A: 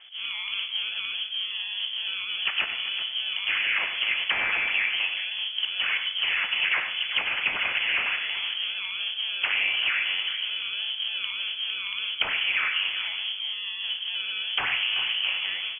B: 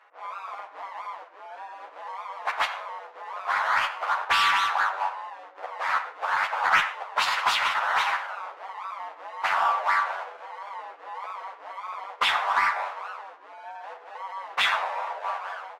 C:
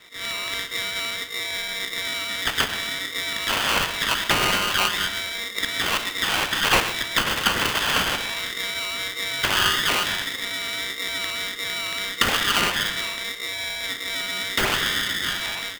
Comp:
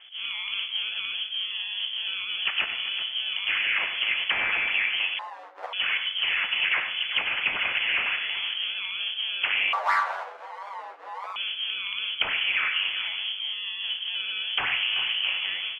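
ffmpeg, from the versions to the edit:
-filter_complex "[1:a]asplit=2[s0][s1];[0:a]asplit=3[s2][s3][s4];[s2]atrim=end=5.192[s5];[s0]atrim=start=5.188:end=5.732[s6];[s3]atrim=start=5.728:end=9.732[s7];[s1]atrim=start=9.728:end=11.362[s8];[s4]atrim=start=11.358[s9];[s5][s6]acrossfade=d=0.004:c1=hsin:c2=hsin[s10];[s10][s7]acrossfade=d=0.004:c1=hsin:c2=hsin[s11];[s11][s8]acrossfade=d=0.004:c1=hsin:c2=hsin[s12];[s12][s9]acrossfade=d=0.004:c1=hsin:c2=hsin"

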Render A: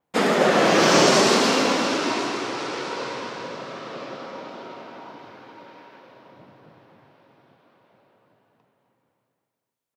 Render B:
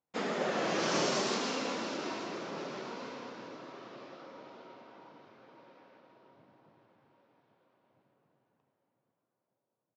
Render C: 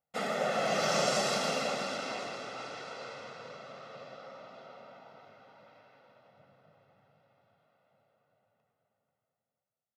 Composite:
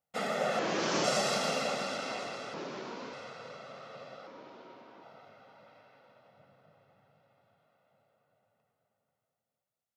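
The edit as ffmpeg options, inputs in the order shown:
-filter_complex "[1:a]asplit=3[s0][s1][s2];[2:a]asplit=4[s3][s4][s5][s6];[s3]atrim=end=0.592[s7];[s0]atrim=start=0.588:end=1.042[s8];[s4]atrim=start=1.038:end=2.542[s9];[s1]atrim=start=2.538:end=3.132[s10];[s5]atrim=start=3.128:end=4.272[s11];[s2]atrim=start=4.268:end=5.032[s12];[s6]atrim=start=5.028[s13];[s7][s8]acrossfade=d=0.004:c1=hsin:c2=hsin[s14];[s14][s9]acrossfade=d=0.004:c1=hsin:c2=hsin[s15];[s15][s10]acrossfade=d=0.004:c1=hsin:c2=hsin[s16];[s16][s11]acrossfade=d=0.004:c1=hsin:c2=hsin[s17];[s17][s12]acrossfade=d=0.004:c1=hsin:c2=hsin[s18];[s18][s13]acrossfade=d=0.004:c1=hsin:c2=hsin"

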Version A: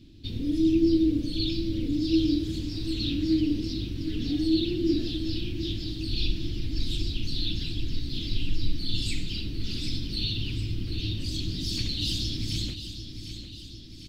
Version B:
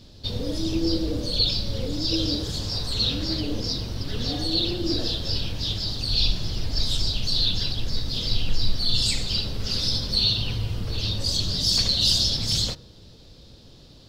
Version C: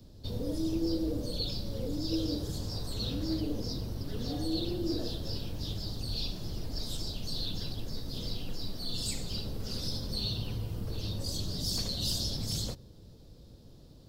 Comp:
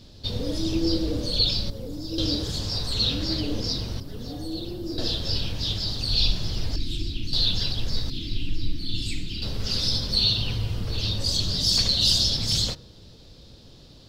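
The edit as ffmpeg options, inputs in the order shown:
-filter_complex "[2:a]asplit=2[s0][s1];[0:a]asplit=2[s2][s3];[1:a]asplit=5[s4][s5][s6][s7][s8];[s4]atrim=end=1.702[s9];[s0]atrim=start=1.698:end=2.182[s10];[s5]atrim=start=2.178:end=4.002[s11];[s1]atrim=start=3.998:end=4.982[s12];[s6]atrim=start=4.978:end=6.762[s13];[s2]atrim=start=6.758:end=7.332[s14];[s7]atrim=start=7.328:end=8.102[s15];[s3]atrim=start=8.098:end=9.422[s16];[s8]atrim=start=9.418[s17];[s9][s10]acrossfade=d=0.004:c1=hsin:c2=hsin[s18];[s18][s11]acrossfade=d=0.004:c1=hsin:c2=hsin[s19];[s19][s12]acrossfade=d=0.004:c1=hsin:c2=hsin[s20];[s20][s13]acrossfade=d=0.004:c1=hsin:c2=hsin[s21];[s21][s14]acrossfade=d=0.004:c1=hsin:c2=hsin[s22];[s22][s15]acrossfade=d=0.004:c1=hsin:c2=hsin[s23];[s23][s16]acrossfade=d=0.004:c1=hsin:c2=hsin[s24];[s24][s17]acrossfade=d=0.004:c1=hsin:c2=hsin"

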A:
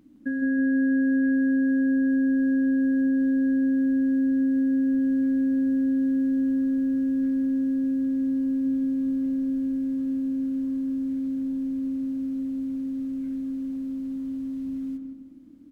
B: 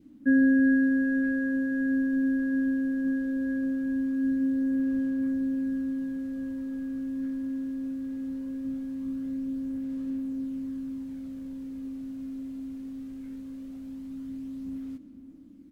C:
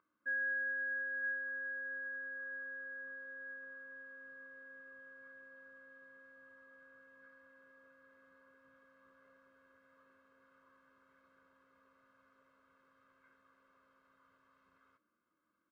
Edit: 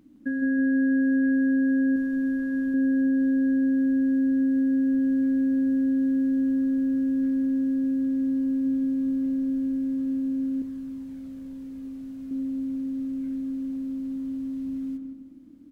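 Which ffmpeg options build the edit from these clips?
-filter_complex "[1:a]asplit=2[s0][s1];[0:a]asplit=3[s2][s3][s4];[s2]atrim=end=1.962[s5];[s0]atrim=start=1.958:end=2.742[s6];[s3]atrim=start=2.738:end=10.622[s7];[s1]atrim=start=10.618:end=12.312[s8];[s4]atrim=start=12.308[s9];[s5][s6]acrossfade=d=0.004:c1=hsin:c2=hsin[s10];[s10][s7]acrossfade=d=0.004:c1=hsin:c2=hsin[s11];[s11][s8]acrossfade=d=0.004:c1=hsin:c2=hsin[s12];[s12][s9]acrossfade=d=0.004:c1=hsin:c2=hsin"

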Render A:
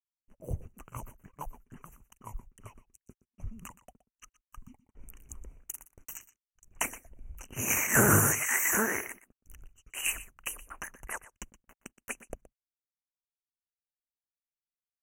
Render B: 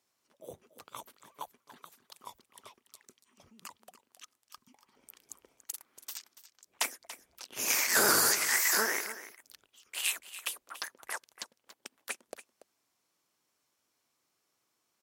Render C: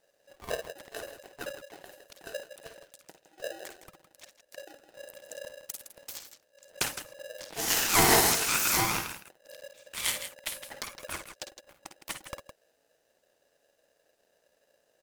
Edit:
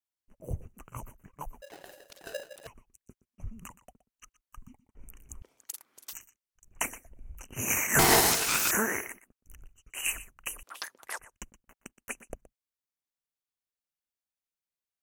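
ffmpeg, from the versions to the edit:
-filter_complex "[2:a]asplit=2[s0][s1];[1:a]asplit=2[s2][s3];[0:a]asplit=5[s4][s5][s6][s7][s8];[s4]atrim=end=1.622[s9];[s0]atrim=start=1.618:end=2.672[s10];[s5]atrim=start=2.668:end=5.422[s11];[s2]atrim=start=5.418:end=6.132[s12];[s6]atrim=start=6.128:end=7.992[s13];[s1]atrim=start=7.988:end=8.712[s14];[s7]atrim=start=8.708:end=10.632[s15];[s3]atrim=start=10.628:end=11.192[s16];[s8]atrim=start=11.188[s17];[s9][s10]acrossfade=d=0.004:c1=hsin:c2=hsin[s18];[s18][s11]acrossfade=d=0.004:c1=hsin:c2=hsin[s19];[s19][s12]acrossfade=d=0.004:c1=hsin:c2=hsin[s20];[s20][s13]acrossfade=d=0.004:c1=hsin:c2=hsin[s21];[s21][s14]acrossfade=d=0.004:c1=hsin:c2=hsin[s22];[s22][s15]acrossfade=d=0.004:c1=hsin:c2=hsin[s23];[s23][s16]acrossfade=d=0.004:c1=hsin:c2=hsin[s24];[s24][s17]acrossfade=d=0.004:c1=hsin:c2=hsin"

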